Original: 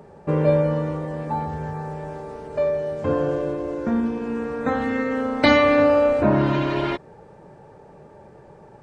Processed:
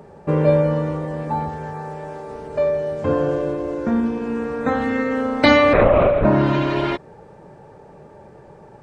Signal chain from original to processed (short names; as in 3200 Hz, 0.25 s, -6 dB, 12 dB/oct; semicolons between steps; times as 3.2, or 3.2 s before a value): 1.49–2.3 low shelf 180 Hz -9 dB; 5.73–6.25 LPC vocoder at 8 kHz whisper; gain +2.5 dB